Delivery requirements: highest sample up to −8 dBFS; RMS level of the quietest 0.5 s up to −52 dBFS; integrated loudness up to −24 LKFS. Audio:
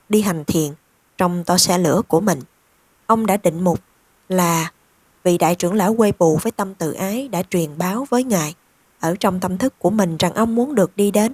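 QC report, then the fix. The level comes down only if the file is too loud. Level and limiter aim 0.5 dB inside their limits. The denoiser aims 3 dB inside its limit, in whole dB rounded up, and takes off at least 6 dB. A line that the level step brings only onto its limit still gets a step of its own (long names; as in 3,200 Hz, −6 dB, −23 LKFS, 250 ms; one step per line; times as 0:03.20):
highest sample −2.0 dBFS: out of spec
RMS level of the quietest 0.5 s −58 dBFS: in spec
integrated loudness −18.5 LKFS: out of spec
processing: level −6 dB
brickwall limiter −8.5 dBFS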